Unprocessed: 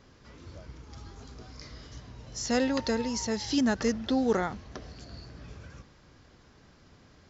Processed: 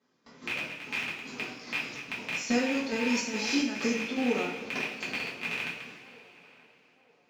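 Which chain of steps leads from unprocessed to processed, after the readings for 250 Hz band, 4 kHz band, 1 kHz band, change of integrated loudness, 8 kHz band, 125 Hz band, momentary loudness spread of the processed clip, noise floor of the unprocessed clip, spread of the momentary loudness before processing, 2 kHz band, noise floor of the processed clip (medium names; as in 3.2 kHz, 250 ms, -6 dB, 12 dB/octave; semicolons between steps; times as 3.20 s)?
-1.0 dB, +3.0 dB, -1.5 dB, -2.5 dB, no reading, -6.5 dB, 9 LU, -58 dBFS, 20 LU, +9.0 dB, -65 dBFS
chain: rattle on loud lows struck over -41 dBFS, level -19 dBFS; high-pass 170 Hz 24 dB/octave; gate with hold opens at -46 dBFS; compression 6:1, threshold -33 dBFS, peak gain reduction 12 dB; square tremolo 2.4 Hz, depth 65%, duty 65%; on a send: band-passed feedback delay 928 ms, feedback 41%, band-pass 680 Hz, level -18 dB; on the sum: two-slope reverb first 0.45 s, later 3.4 s, from -18 dB, DRR -7.5 dB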